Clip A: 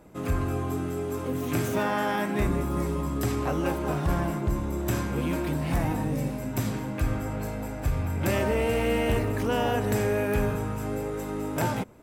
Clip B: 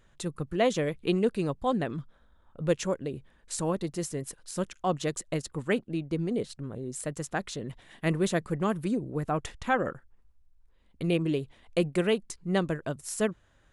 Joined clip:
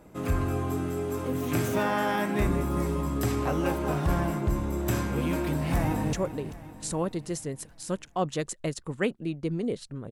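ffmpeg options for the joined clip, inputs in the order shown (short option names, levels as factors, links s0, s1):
-filter_complex "[0:a]apad=whole_dur=10.11,atrim=end=10.11,atrim=end=6.132[s0];[1:a]atrim=start=2.808:end=6.79[s1];[s0][s1]acrossfade=d=0.004:c1=hsin:c2=hsin,asplit=2[s2][s3];[s3]afade=t=in:st=5.47:d=0.01,afade=t=out:st=6.13:d=0.01,aecho=0:1:390|780|1170|1560|1950|2340:0.223872|0.12313|0.0677213|0.0372467|0.0204857|0.0112671[s4];[s2][s4]amix=inputs=2:normalize=0"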